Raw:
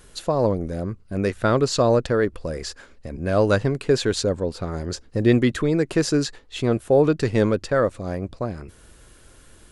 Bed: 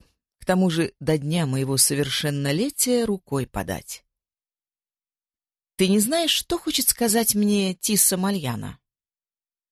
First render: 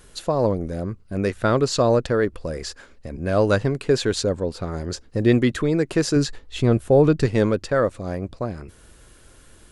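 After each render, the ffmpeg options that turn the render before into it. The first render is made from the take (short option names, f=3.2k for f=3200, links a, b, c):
-filter_complex "[0:a]asettb=1/sr,asplit=3[a][b][c];[a]atrim=end=6.164[d];[b]atrim=start=6.16:end=7.26,asetpts=PTS-STARTPTS,afade=t=in:d=0.004:c=qsin,afade=t=out:st=1.096:d=0.004:c=qsin,lowshelf=f=150:g=10[e];[c]atrim=start=7.256[f];[d][e]acrossfade=d=0.004:c1=hsin:c2=qsin[g];[g][f]acrossfade=d=0.004:c1=qsin:c2=hsin"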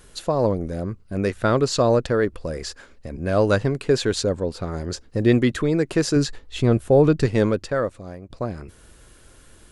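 -filter_complex "[0:a]asplit=2[a][b];[a]atrim=end=8.3,asetpts=PTS-STARTPTS,afade=t=out:st=7.48:d=0.82:silence=0.199526[c];[b]atrim=start=8.3,asetpts=PTS-STARTPTS,afade=t=in:d=0.004:c=hsin:silence=0.199526[d];[c][d]concat=n=2:v=0:a=1"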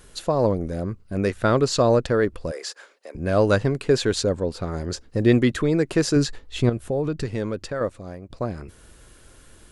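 -filter_complex "[0:a]asettb=1/sr,asplit=3[a][b][c];[a]atrim=end=2.514[d];[b]atrim=start=2.51:end=3.15,asetpts=PTS-STARTPTS,afade=t=in:d=0.004:c=qsin,afade=t=out:st=0.636:d=0.004:c=qsin,highpass=f=420:w=0.5412,highpass=f=420:w=1.3066[e];[c]atrim=start=3.146[f];[d][e]acrossfade=d=0.004:c1=hsin:c2=qsin[g];[g][f]acrossfade=d=0.004:c1=qsin:c2=hsin,asettb=1/sr,asplit=3[h][i][j];[h]atrim=end=6.694[k];[i]atrim=start=6.69:end=7.81,asetpts=PTS-STARTPTS,afade=t=in:d=0.004:c=qsin,afade=t=out:st=1.116:d=0.004:c=qsin,acompressor=threshold=-28dB:ratio=2:attack=3.2:release=140:knee=1:detection=peak[l];[j]atrim=start=7.806[m];[k][l]acrossfade=d=0.004:c1=hsin:c2=qsin[n];[n][m]acrossfade=d=0.004:c1=qsin:c2=hsin"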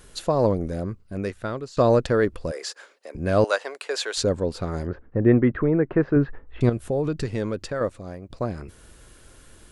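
-filter_complex "[0:a]asettb=1/sr,asplit=3[a][b][c];[a]atrim=end=3.444[d];[b]atrim=start=3.44:end=4.17,asetpts=PTS-STARTPTS,afade=t=in:d=0.004:c=qsin,afade=t=out:st=0.726:d=0.004:c=qsin,highpass=f=560:w=0.5412,highpass=f=560:w=1.3066[e];[c]atrim=start=4.166[f];[d][e]acrossfade=d=0.004:c1=hsin:c2=qsin[g];[g][f]acrossfade=d=0.004:c1=qsin:c2=hsin,asettb=1/sr,asplit=3[h][i][j];[h]atrim=end=4.874[k];[i]atrim=start=4.87:end=6.61,asetpts=PTS-STARTPTS,afade=t=in:d=0.004:c=qsin,afade=t=out:st=1.736:d=0.004:c=qsin,lowpass=f=1.8k:w=0.5412,lowpass=f=1.8k:w=1.3066[l];[j]atrim=start=6.606[m];[k][l]acrossfade=d=0.004:c1=hsin:c2=qsin[n];[n][m]acrossfade=d=0.004:c1=qsin:c2=hsin,asplit=2[o][p];[o]atrim=end=1.77,asetpts=PTS-STARTPTS,afade=t=out:st=0.67:d=1.1:silence=0.0794328[q];[p]atrim=start=1.77,asetpts=PTS-STARTPTS,afade=t=in:d=0.004:c=hsin:silence=0.0794328[r];[q][r]concat=n=2:v=0:a=1"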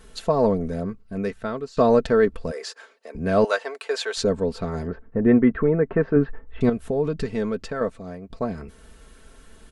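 -af "highshelf=f=5k:g=-7.5,aecho=1:1:4.5:0.62"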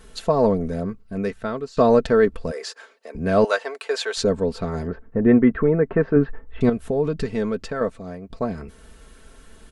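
-af "volume=1.5dB"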